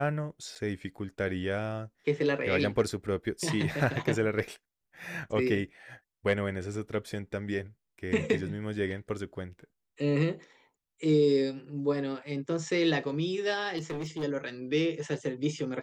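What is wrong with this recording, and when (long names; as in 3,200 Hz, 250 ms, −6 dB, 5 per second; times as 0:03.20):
0:00.55–0:00.56: drop-out 7.2 ms
0:13.77–0:14.24: clipping −31.5 dBFS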